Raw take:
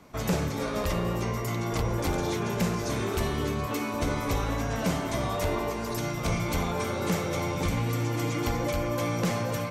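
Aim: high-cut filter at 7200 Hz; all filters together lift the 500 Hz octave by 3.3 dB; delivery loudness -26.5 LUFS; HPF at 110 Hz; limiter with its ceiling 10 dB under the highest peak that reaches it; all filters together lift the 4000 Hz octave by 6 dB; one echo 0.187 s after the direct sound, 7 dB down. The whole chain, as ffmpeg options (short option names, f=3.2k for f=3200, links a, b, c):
-af "highpass=110,lowpass=7.2k,equalizer=f=500:t=o:g=4,equalizer=f=4k:t=o:g=8,alimiter=limit=-23dB:level=0:latency=1,aecho=1:1:187:0.447,volume=4.5dB"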